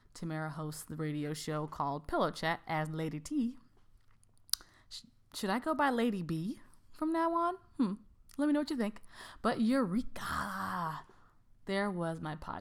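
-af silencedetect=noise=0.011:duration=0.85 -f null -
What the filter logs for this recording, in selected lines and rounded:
silence_start: 3.50
silence_end: 4.50 | silence_duration: 0.99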